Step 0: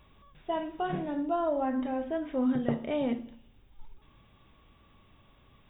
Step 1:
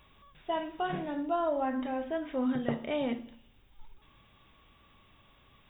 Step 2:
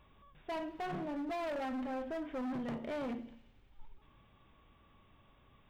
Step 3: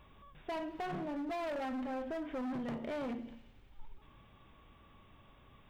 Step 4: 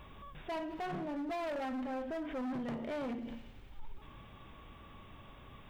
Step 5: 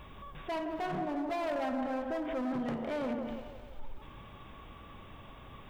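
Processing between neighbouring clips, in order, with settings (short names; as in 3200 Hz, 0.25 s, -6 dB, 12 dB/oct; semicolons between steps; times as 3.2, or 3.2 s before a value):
tilt shelf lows -3.5 dB, about 830 Hz
high shelf 2400 Hz -11.5 dB; overloaded stage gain 34.5 dB; thin delay 91 ms, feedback 81%, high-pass 2300 Hz, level -20.5 dB; gain -1.5 dB
compressor 2.5:1, threshold -43 dBFS, peak gain reduction 4 dB; gain +4 dB
limiter -42.5 dBFS, peak gain reduction 9.5 dB; gain +7 dB
band-limited delay 0.169 s, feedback 54%, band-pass 740 Hz, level -5 dB; gain +3 dB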